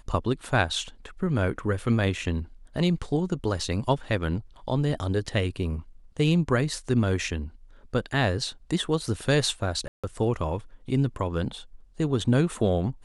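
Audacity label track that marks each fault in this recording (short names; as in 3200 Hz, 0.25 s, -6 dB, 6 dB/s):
9.880000	10.040000	gap 0.156 s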